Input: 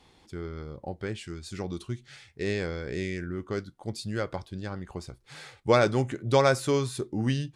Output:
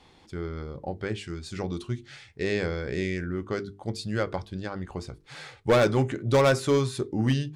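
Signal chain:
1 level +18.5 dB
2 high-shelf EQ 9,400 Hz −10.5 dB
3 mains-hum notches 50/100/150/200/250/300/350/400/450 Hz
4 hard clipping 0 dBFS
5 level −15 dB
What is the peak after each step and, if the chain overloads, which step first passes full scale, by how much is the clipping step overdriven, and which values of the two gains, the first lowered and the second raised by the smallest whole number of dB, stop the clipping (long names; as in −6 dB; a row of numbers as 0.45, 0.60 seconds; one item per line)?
+10.0, +10.0, +9.5, 0.0, −15.0 dBFS
step 1, 9.5 dB
step 1 +8.5 dB, step 5 −5 dB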